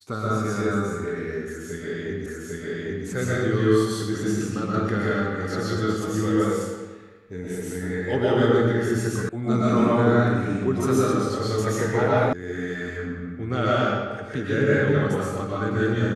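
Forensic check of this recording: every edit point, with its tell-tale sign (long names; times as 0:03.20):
0:02.26: the same again, the last 0.8 s
0:09.29: cut off before it has died away
0:12.33: cut off before it has died away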